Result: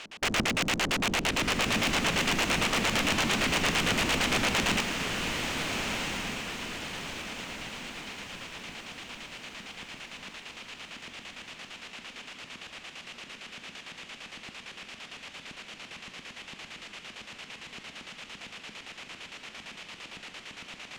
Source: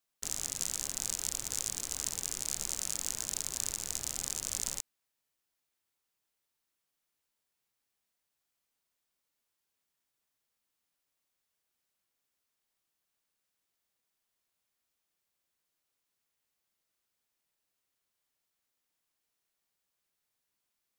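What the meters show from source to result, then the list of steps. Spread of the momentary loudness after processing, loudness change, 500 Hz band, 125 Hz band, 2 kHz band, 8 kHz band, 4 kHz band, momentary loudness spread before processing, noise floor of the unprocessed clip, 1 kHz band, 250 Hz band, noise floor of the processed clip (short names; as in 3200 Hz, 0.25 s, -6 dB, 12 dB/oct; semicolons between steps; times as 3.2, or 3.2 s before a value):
17 LU, +5.5 dB, +21.0 dB, +18.0 dB, +25.0 dB, -2.0 dB, +14.0 dB, 2 LU, -85 dBFS, +22.5 dB, +23.5 dB, -50 dBFS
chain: per-bin compression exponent 0.6; tone controls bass -14 dB, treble +2 dB; LFO low-pass square 8.8 Hz 220–2700 Hz; in parallel at -6 dB: sine folder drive 17 dB, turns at -28.5 dBFS; on the sum: diffused feedback echo 1.388 s, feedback 47%, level -4.5 dB; gain +8.5 dB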